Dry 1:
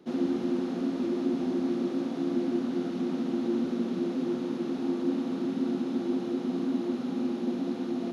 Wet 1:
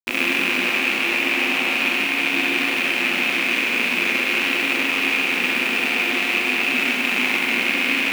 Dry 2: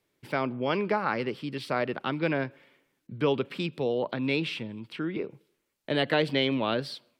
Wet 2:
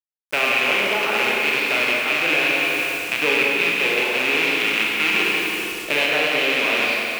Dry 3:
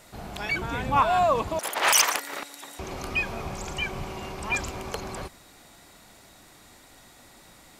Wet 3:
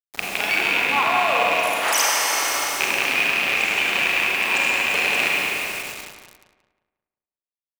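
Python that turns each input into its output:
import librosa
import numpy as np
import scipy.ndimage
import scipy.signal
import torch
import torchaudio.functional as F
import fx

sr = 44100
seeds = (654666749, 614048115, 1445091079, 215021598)

p1 = fx.rattle_buzz(x, sr, strikes_db=-37.0, level_db=-10.0)
p2 = scipy.signal.sosfilt(scipy.signal.butter(2, 310.0, 'highpass', fs=sr, output='sos'), p1)
p3 = fx.rev_schroeder(p2, sr, rt60_s=2.4, comb_ms=32, drr_db=-3.0)
p4 = fx.quant_dither(p3, sr, seeds[0], bits=6, dither='none')
p5 = fx.rider(p4, sr, range_db=5, speed_s=0.5)
y = p5 + fx.echo_filtered(p5, sr, ms=178, feedback_pct=38, hz=2900.0, wet_db=-6, dry=0)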